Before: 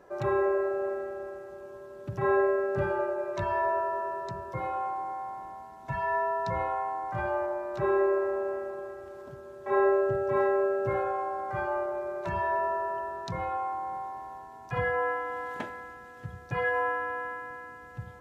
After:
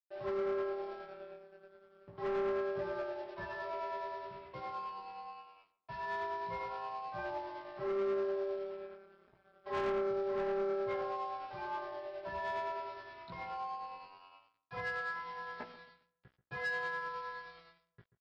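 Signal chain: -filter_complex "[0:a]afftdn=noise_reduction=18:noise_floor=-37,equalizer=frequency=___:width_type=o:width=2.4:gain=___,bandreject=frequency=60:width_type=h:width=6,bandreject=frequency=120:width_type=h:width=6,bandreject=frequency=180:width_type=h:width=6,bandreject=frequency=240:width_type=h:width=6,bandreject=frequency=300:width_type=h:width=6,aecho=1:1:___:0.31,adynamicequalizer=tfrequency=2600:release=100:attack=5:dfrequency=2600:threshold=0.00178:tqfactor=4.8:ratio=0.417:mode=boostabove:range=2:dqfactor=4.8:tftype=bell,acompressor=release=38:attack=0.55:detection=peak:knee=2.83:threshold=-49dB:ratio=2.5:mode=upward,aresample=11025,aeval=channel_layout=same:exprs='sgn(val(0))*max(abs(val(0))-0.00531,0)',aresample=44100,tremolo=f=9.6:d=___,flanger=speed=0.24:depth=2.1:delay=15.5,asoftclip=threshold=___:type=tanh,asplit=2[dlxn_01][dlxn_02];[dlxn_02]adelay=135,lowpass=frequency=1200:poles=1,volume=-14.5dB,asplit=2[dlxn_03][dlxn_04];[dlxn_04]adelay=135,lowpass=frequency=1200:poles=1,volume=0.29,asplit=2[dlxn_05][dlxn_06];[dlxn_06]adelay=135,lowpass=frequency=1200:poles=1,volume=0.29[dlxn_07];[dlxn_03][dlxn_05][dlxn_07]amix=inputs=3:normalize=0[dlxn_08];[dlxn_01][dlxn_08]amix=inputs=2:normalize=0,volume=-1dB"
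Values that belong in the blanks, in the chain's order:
100, -7, 4.7, 0.37, -30.5dB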